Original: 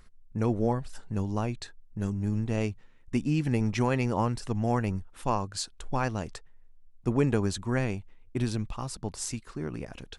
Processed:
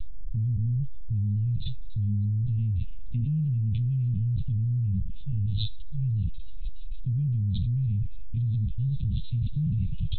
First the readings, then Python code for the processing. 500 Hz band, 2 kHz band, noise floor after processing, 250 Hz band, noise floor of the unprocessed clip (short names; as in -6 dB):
under -30 dB, under -25 dB, -28 dBFS, -5.5 dB, -55 dBFS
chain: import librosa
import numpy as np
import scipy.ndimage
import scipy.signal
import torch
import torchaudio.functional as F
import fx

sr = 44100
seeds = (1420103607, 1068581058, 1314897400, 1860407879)

p1 = fx.env_lowpass_down(x, sr, base_hz=2600.0, full_db=-23.5)
p2 = scipy.signal.sosfilt(scipy.signal.cheby2(4, 60, [390.0, 1700.0], 'bandstop', fs=sr, output='sos'), p1)
p3 = fx.high_shelf(p2, sr, hz=2800.0, db=-7.5)
p4 = fx.rider(p3, sr, range_db=4, speed_s=2.0)
p5 = p4 + fx.echo_wet_highpass(p4, sr, ms=296, feedback_pct=57, hz=1500.0, wet_db=-12.0, dry=0)
p6 = fx.rev_schroeder(p5, sr, rt60_s=0.52, comb_ms=26, drr_db=10.0)
p7 = fx.lpc_vocoder(p6, sr, seeds[0], excitation='pitch_kept', order=16)
y = fx.env_flatten(p7, sr, amount_pct=100)